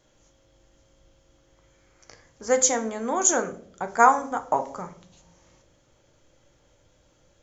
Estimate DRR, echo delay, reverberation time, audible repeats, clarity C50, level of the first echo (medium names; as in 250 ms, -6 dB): 6.5 dB, no echo, 0.55 s, no echo, 15.0 dB, no echo